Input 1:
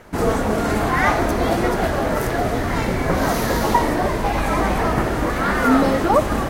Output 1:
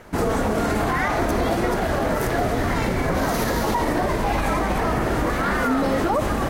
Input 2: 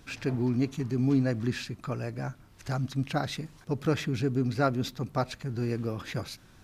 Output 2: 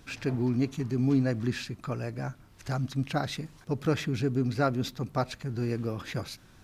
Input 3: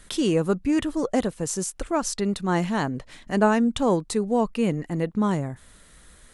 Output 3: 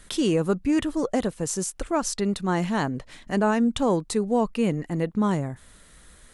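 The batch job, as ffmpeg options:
-af "alimiter=limit=-13dB:level=0:latency=1:release=44"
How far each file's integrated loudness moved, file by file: -2.5, 0.0, -0.5 LU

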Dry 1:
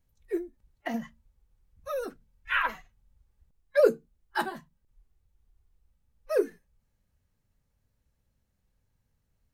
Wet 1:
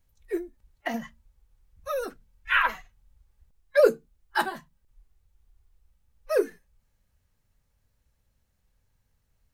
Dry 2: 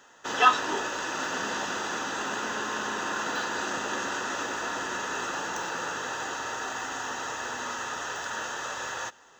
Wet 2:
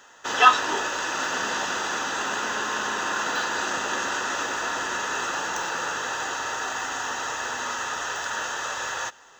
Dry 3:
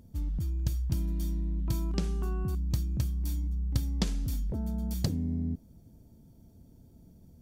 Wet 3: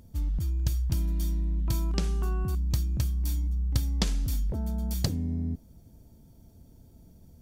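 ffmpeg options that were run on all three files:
-af "equalizer=f=210:t=o:w=2.6:g=-5.5,volume=5dB"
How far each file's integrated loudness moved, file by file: +3.0, +4.5, +2.5 LU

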